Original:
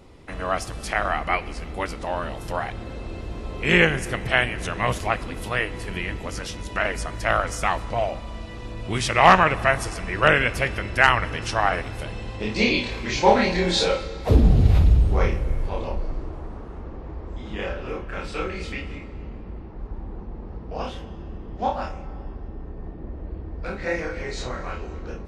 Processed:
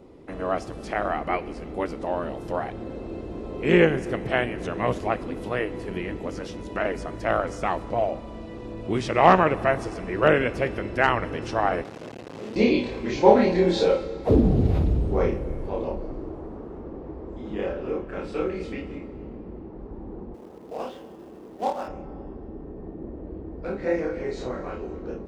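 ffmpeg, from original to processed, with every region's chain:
ffmpeg -i in.wav -filter_complex "[0:a]asettb=1/sr,asplit=3[link_01][link_02][link_03];[link_01]atrim=end=11.844[link_04];[link_02]atrim=start=11.84:end=12.56,asetpts=PTS-STARTPTS,afade=type=in:duration=0.004:curve=qsin,afade=type=out:start_time=0.716:duration=0.004:curve=qsin,asoftclip=type=hard:threshold=-31dB,acrusher=bits=3:dc=4:mix=0:aa=0.000001,highpass=110,lowpass=7300[link_05];[link_03]atrim=start=12.556[link_06];[link_04][link_05]acrossfade=duration=0.004:curve1=hsin:curve2=qsin[link_07];[link_07][link_06]acrossfade=duration=0.004:curve1=qsin:curve2=hsin,asettb=1/sr,asplit=3[link_08][link_09][link_10];[link_08]atrim=end=20.344[link_11];[link_09]atrim=start=20.34:end=21.88,asetpts=PTS-STARTPTS,afade=type=in:duration=0.004:curve=qsin,afade=type=out:start_time=1.536:duration=0.004:curve=qsin,highpass=frequency=500:poles=1,acrusher=bits=2:mode=log:mix=0:aa=0.000001[link_12];[link_10]atrim=start=21.876[link_13];[link_11][link_12]acrossfade=duration=0.004:curve1=hsin:curve2=qsin[link_14];[link_14][link_13]acrossfade=duration=0.004:curve1=qsin:curve2=hsin,acrossover=split=8000[link_15][link_16];[link_16]acompressor=threshold=-52dB:ratio=4:attack=1:release=60[link_17];[link_15][link_17]amix=inputs=2:normalize=0,equalizer=frequency=350:width=0.46:gain=15,volume=-10dB" out.wav

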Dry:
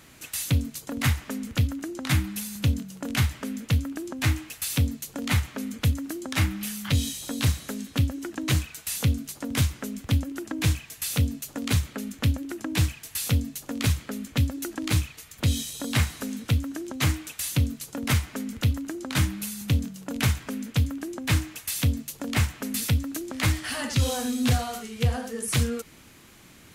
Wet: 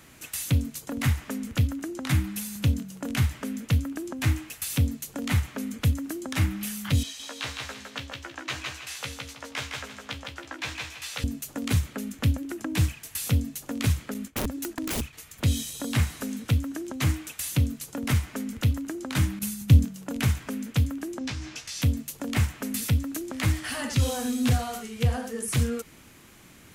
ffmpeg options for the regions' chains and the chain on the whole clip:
ffmpeg -i in.wav -filter_complex "[0:a]asettb=1/sr,asplit=3[link_01][link_02][link_03];[link_01]atrim=end=7.034[link_04];[link_02]atrim=start=7.03:end=11.24,asetpts=PTS-STARTPTS,afade=type=in:duration=0.004:curve=qsin,afade=type=out:start_time=4.206:duration=0.004:curve=qsin,acrossover=split=540 6100:gain=0.0794 1 0.126[link_05][link_06][link_07];[link_05][link_06][link_07]amix=inputs=3:normalize=0,asplit=2[link_08][link_09];[link_09]adelay=15,volume=-5dB[link_10];[link_08][link_10]amix=inputs=2:normalize=0,atrim=end_sample=185661,aecho=1:1:160|320|480|640:0.631|0.183|0.0531|0.0154,atrim=end_sample=185661[link_11];[link_03]atrim=start=11.236[link_12];[link_04][link_11]acrossfade=duration=0.004:curve1=hsin:curve2=qsin[link_13];[link_13][link_12]acrossfade=duration=0.004:curve1=qsin:curve2=hsin,asettb=1/sr,asplit=3[link_14][link_15][link_16];[link_14]atrim=end=14.144[link_17];[link_15]atrim=start=14.14:end=15.13,asetpts=PTS-STARTPTS,afade=type=in:duration=0.004:curve=qsin,afade=type=out:start_time=0.986:duration=0.004:curve=qsin,agate=range=-33dB:threshold=-38dB:ratio=3:release=100:detection=peak,aeval=exprs='(mod(11.2*val(0)+1,2)-1)/11.2':channel_layout=same[link_18];[link_16]atrim=start=15.126[link_19];[link_17][link_18]acrossfade=duration=0.004:curve1=hsin:curve2=qsin[link_20];[link_20][link_19]acrossfade=duration=0.004:curve1=qsin:curve2=hsin,asettb=1/sr,asplit=3[link_21][link_22][link_23];[link_21]atrim=end=19.394[link_24];[link_22]atrim=start=19.39:end=19.85,asetpts=PTS-STARTPTS,afade=type=in:duration=0.004:curve=qsin,afade=type=out:start_time=0.456:duration=0.004:curve=qsin,agate=range=-33dB:threshold=-33dB:ratio=3:release=100:detection=peak,bass=frequency=250:gain=8,treble=frequency=4000:gain=3[link_25];[link_23]atrim=start=19.846[link_26];[link_24][link_25]acrossfade=duration=0.004:curve1=hsin:curve2=qsin[link_27];[link_27][link_26]acrossfade=duration=0.004:curve1=qsin:curve2=hsin,asettb=1/sr,asplit=3[link_28][link_29][link_30];[link_28]atrim=end=21.194[link_31];[link_29]atrim=start=21.19:end=21.82,asetpts=PTS-STARTPTS,afade=type=in:duration=0.004:curve=qsin,afade=type=out:start_time=0.626:duration=0.004:curve=qsin,acompressor=threshold=-31dB:ratio=12:attack=3.2:release=140:knee=1:detection=peak,lowpass=frequency=5400:width_type=q:width=2.3,asplit=2[link_32][link_33];[link_33]adelay=15,volume=-4.5dB[link_34];[link_32][link_34]amix=inputs=2:normalize=0,atrim=end_sample=27783[link_35];[link_30]atrim=start=21.816[link_36];[link_31][link_35]acrossfade=duration=0.004:curve1=hsin:curve2=qsin[link_37];[link_37][link_36]acrossfade=duration=0.004:curve1=qsin:curve2=hsin,equalizer=frequency=4200:width_type=o:width=0.77:gain=-2.5,acrossover=split=420[link_38][link_39];[link_39]acompressor=threshold=-28dB:ratio=6[link_40];[link_38][link_40]amix=inputs=2:normalize=0" out.wav

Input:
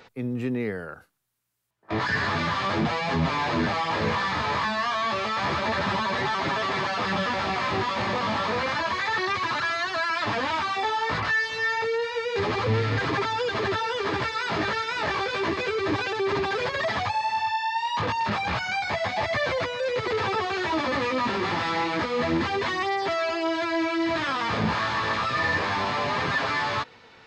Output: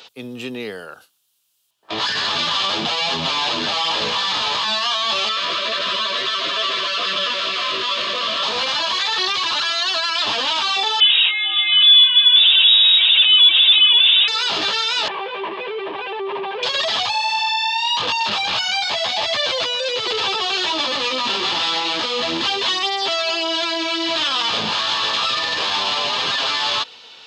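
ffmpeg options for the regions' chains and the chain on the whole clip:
ffmpeg -i in.wav -filter_complex "[0:a]asettb=1/sr,asplit=3[link_01][link_02][link_03];[link_01]atrim=end=5.294[link_04];[link_02]atrim=start=5.29:end=8.43,asetpts=PTS-STARTPTS,afade=type=in:duration=0.004:curve=qsin,afade=type=out:start_time=3.136:duration=0.004:curve=qsin,asuperstop=centerf=840:order=20:qfactor=3.2,bass=frequency=250:gain=-9,treble=frequency=4000:gain=-6[link_05];[link_03]atrim=start=8.426[link_06];[link_04][link_05]acrossfade=duration=0.004:curve1=hsin:curve2=qsin[link_07];[link_07][link_06]acrossfade=duration=0.004:curve1=qsin:curve2=hsin,asettb=1/sr,asplit=3[link_08][link_09][link_10];[link_08]atrim=end=11.004[link_11];[link_09]atrim=start=11:end=14.28,asetpts=PTS-STARTPTS,afade=type=in:duration=0.004:curve=qsin,afade=type=out:start_time=3.276:duration=0.004:curve=qsin,aeval=exprs='0.0944*(abs(mod(val(0)/0.0944+3,4)-2)-1)':channel_layout=same,lowpass=frequency=3300:width_type=q:width=0.5098,lowpass=frequency=3300:width_type=q:width=0.6013,lowpass=frequency=3300:width_type=q:width=0.9,lowpass=frequency=3300:width_type=q:width=2.563,afreqshift=-3900[link_12];[link_10]atrim=start=14.276[link_13];[link_11][link_12]acrossfade=duration=0.004:curve1=hsin:curve2=qsin[link_14];[link_14][link_13]acrossfade=duration=0.004:curve1=qsin:curve2=hsin,asettb=1/sr,asplit=3[link_15][link_16][link_17];[link_15]atrim=end=15.084[link_18];[link_16]atrim=start=15.08:end=16.63,asetpts=PTS-STARTPTS,afade=type=in:duration=0.004:curve=qsin,afade=type=out:start_time=1.546:duration=0.004:curve=qsin,volume=25.5dB,asoftclip=hard,volume=-25.5dB,highpass=frequency=150:width=0.5412,highpass=frequency=150:width=1.3066,equalizer=frequency=280:width_type=q:width=4:gain=-10,equalizer=frequency=410:width_type=q:width=4:gain=4,equalizer=frequency=950:width_type=q:width=4:gain=5,equalizer=frequency=1400:width_type=q:width=4:gain=-9,lowpass=frequency=2200:width=0.5412,lowpass=frequency=2200:width=1.3066[link_19];[link_17]atrim=start=16.626[link_20];[link_18][link_19]acrossfade=duration=0.004:curve1=hsin:curve2=qsin[link_21];[link_21][link_20]acrossfade=duration=0.004:curve1=qsin:curve2=hsin,highpass=frequency=720:poles=1,alimiter=limit=-21dB:level=0:latency=1:release=16,highshelf=frequency=2500:width_type=q:width=3:gain=6.5,volume=6.5dB" out.wav

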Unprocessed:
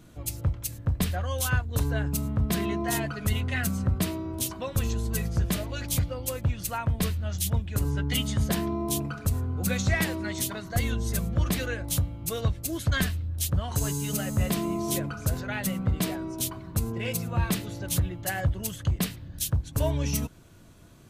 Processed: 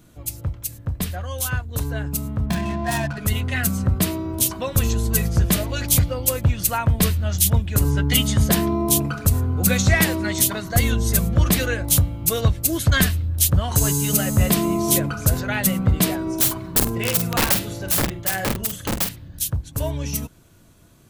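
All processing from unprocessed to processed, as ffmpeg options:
ffmpeg -i in.wav -filter_complex "[0:a]asettb=1/sr,asplit=3[link_01][link_02][link_03];[link_01]atrim=end=2.464[link_04];[link_02]atrim=start=2.46:end=3.18,asetpts=PTS-STARTPTS,afade=type=in:duration=0.004:curve=qsin,afade=type=out:start_time=0.716:duration=0.004:curve=qsin,aecho=1:1:1.2:0.76,atrim=end_sample=31752,adynamicsmooth=sensitivity=7.5:basefreq=720[link_05];[link_03]atrim=start=3.176[link_06];[link_04][link_05]acrossfade=duration=0.004:curve1=hsin:curve2=qsin[link_07];[link_07][link_06]acrossfade=duration=0.004:curve1=qsin:curve2=hsin,asettb=1/sr,asplit=3[link_08][link_09][link_10];[link_08]atrim=end=16.224[link_11];[link_09]atrim=start=16.22:end=19.09,asetpts=PTS-STARTPTS,afade=type=in:duration=0.004:curve=qsin,afade=type=out:start_time=2.866:duration=0.004:curve=qsin,bandreject=frequency=50:width_type=h:width=6,bandreject=frequency=100:width_type=h:width=6,bandreject=frequency=150:width_type=h:width=6,bandreject=frequency=200:width_type=h:width=6,bandreject=frequency=250:width_type=h:width=6,bandreject=frequency=300:width_type=h:width=6,bandreject=frequency=350:width_type=h:width=6,aeval=exprs='(mod(11.9*val(0)+1,2)-1)/11.9':channel_layout=same,asplit=2[link_12][link_13];[link_13]adelay=47,volume=-8dB[link_14];[link_12][link_14]amix=inputs=2:normalize=0,atrim=end_sample=126567[link_15];[link_10]atrim=start=19.086[link_16];[link_11][link_15]acrossfade=duration=0.004:curve1=hsin:curve2=qsin[link_17];[link_17][link_16]acrossfade=duration=0.004:curve1=qsin:curve2=hsin,highshelf=frequency=8700:gain=7.5,dynaudnorm=framelen=340:gausssize=21:maxgain=9dB" out.wav

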